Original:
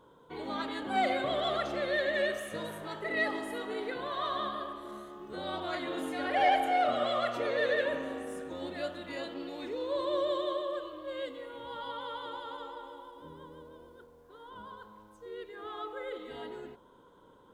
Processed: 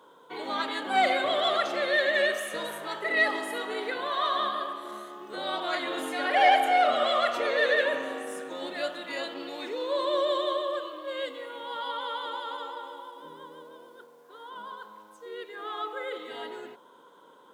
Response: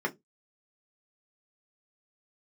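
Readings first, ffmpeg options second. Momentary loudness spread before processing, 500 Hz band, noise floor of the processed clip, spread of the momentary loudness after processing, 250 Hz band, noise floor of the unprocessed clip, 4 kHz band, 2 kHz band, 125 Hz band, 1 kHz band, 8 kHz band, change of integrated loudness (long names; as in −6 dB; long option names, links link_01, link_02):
19 LU, +4.0 dB, −55 dBFS, 19 LU, 0.0 dB, −59 dBFS, +8.0 dB, +7.5 dB, can't be measured, +5.5 dB, +8.0 dB, +5.5 dB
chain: -filter_complex "[0:a]lowshelf=frequency=400:gain=-11.5,acrossover=split=150[link_01][link_02];[link_01]acrusher=bits=3:dc=4:mix=0:aa=0.000001[link_03];[link_03][link_02]amix=inputs=2:normalize=0,volume=8dB"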